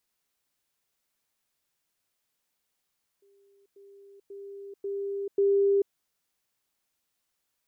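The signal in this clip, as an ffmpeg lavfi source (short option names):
-f lavfi -i "aevalsrc='pow(10,(-59.5+10*floor(t/0.54))/20)*sin(2*PI*398*t)*clip(min(mod(t,0.54),0.44-mod(t,0.54))/0.005,0,1)':d=2.7:s=44100"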